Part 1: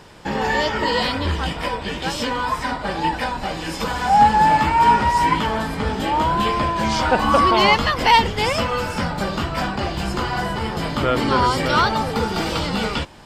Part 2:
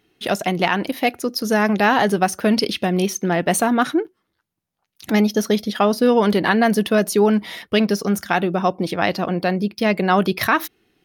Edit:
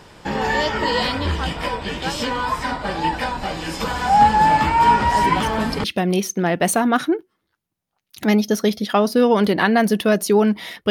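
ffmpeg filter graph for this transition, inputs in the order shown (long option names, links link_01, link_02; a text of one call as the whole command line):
ffmpeg -i cue0.wav -i cue1.wav -filter_complex "[1:a]asplit=2[link_01][link_02];[0:a]apad=whole_dur=10.9,atrim=end=10.9,atrim=end=5.842[link_03];[link_02]atrim=start=2.698:end=7.76[link_04];[link_01]atrim=start=1.97:end=2.7,asetpts=PTS-STARTPTS,volume=-9dB,afade=type=in:duration=0.004:curve=hsin,afade=type=out:start_time=0.726:duration=0.004:curve=hsin,adelay=5110[link_05];[link_03][link_04]acrossfade=duration=0.004:curve1=hsin:curve2=hsin[link_06];[link_06][link_05]amix=inputs=2:normalize=0" out.wav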